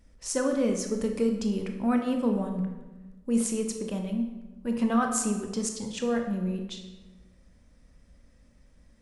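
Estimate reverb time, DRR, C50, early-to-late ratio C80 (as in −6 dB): 1.2 s, 3.5 dB, 6.0 dB, 8.0 dB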